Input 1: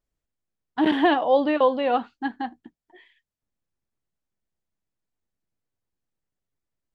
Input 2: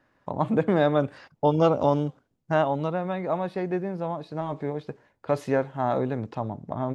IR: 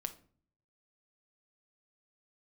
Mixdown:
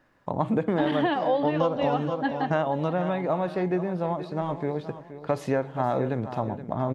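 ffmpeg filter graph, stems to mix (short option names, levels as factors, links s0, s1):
-filter_complex "[0:a]volume=1.19,asplit=2[s0][s1];[s1]volume=0.168[s2];[1:a]volume=0.891,asplit=3[s3][s4][s5];[s4]volume=0.501[s6];[s5]volume=0.282[s7];[2:a]atrim=start_sample=2205[s8];[s6][s8]afir=irnorm=-1:irlink=0[s9];[s2][s7]amix=inputs=2:normalize=0,aecho=0:1:473|946|1419|1892|2365:1|0.35|0.122|0.0429|0.015[s10];[s0][s3][s9][s10]amix=inputs=4:normalize=0,acompressor=threshold=0.1:ratio=10"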